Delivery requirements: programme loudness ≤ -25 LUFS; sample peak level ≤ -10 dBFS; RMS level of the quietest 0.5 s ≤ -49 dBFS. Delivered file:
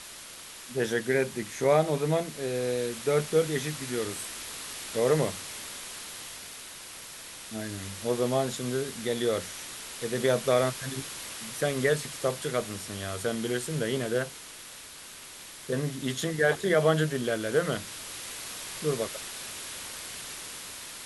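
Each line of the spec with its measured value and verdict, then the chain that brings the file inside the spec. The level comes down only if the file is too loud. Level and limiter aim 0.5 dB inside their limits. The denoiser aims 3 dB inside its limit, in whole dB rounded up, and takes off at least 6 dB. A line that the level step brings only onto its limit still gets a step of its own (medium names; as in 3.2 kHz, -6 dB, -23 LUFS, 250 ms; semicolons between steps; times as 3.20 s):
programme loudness -30.0 LUFS: pass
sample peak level -11.0 dBFS: pass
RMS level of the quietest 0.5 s -46 dBFS: fail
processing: noise reduction 6 dB, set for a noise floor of -46 dBFS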